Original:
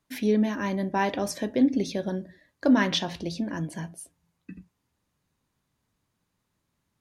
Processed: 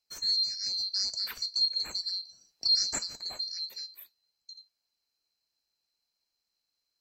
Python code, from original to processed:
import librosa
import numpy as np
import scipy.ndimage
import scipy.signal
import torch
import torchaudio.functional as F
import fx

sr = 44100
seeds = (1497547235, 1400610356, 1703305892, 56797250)

y = fx.band_swap(x, sr, width_hz=4000)
y = fx.band_squash(y, sr, depth_pct=40, at=(0.66, 2.7))
y = y * 10.0 ** (-6.0 / 20.0)